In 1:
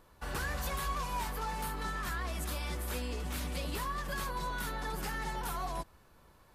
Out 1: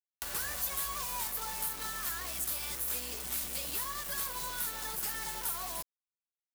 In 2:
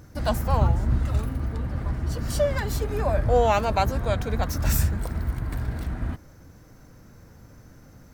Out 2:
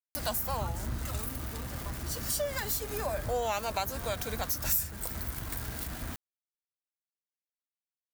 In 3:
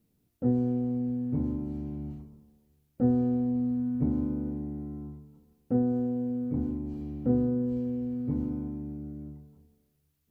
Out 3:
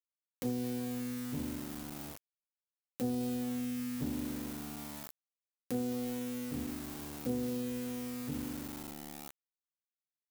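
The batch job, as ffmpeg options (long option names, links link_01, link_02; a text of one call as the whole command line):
ffmpeg -i in.wav -af "lowshelf=frequency=280:gain=-8.5,aeval=exprs='val(0)*gte(abs(val(0)),0.00841)':channel_layout=same,acompressor=mode=upward:threshold=-38dB:ratio=2.5,aemphasis=mode=production:type=75kf,acompressor=threshold=-27dB:ratio=2.5,volume=-3.5dB" out.wav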